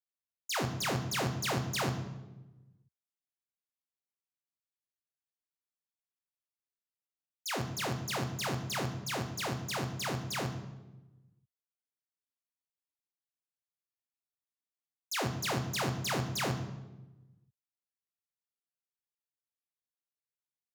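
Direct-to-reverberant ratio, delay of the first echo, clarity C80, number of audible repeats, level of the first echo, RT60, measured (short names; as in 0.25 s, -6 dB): 6.0 dB, none, 11.5 dB, none, none, 1.1 s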